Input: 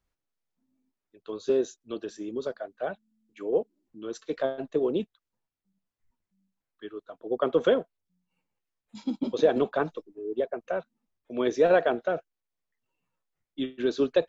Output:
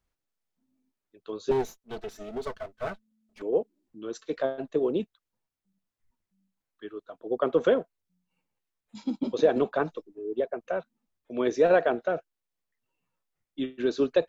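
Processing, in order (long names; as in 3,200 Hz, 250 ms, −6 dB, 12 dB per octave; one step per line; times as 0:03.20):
0:01.51–0:03.42: lower of the sound and its delayed copy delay 4.6 ms
dynamic equaliser 3,300 Hz, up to −5 dB, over −57 dBFS, Q 7.5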